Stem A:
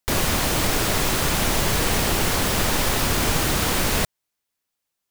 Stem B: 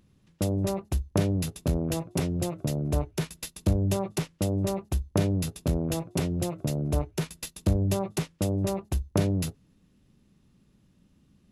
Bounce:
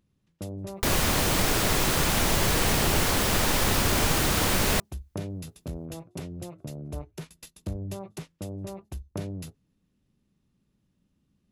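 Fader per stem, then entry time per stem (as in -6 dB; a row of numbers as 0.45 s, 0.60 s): -2.5 dB, -9.5 dB; 0.75 s, 0.00 s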